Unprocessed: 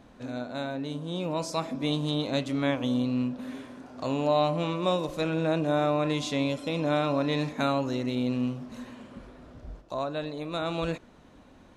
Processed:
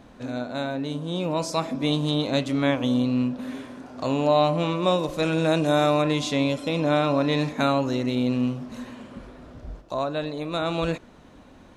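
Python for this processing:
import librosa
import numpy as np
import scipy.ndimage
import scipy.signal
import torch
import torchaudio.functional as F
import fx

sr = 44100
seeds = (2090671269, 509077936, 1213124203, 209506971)

y = fx.high_shelf(x, sr, hz=fx.line((5.22, 5000.0), (6.01, 3400.0)), db=12.0, at=(5.22, 6.01), fade=0.02)
y = y * 10.0 ** (4.5 / 20.0)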